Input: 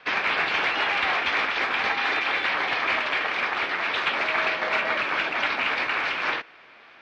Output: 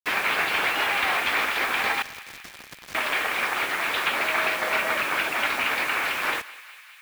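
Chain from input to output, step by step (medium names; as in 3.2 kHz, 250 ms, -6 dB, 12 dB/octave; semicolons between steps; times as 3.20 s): 2.02–2.95 s: FFT filter 180 Hz 0 dB, 350 Hz -14 dB, 1.9 kHz -19 dB; bit crusher 6-bit; thinning echo 202 ms, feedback 79%, high-pass 1 kHz, level -17.5 dB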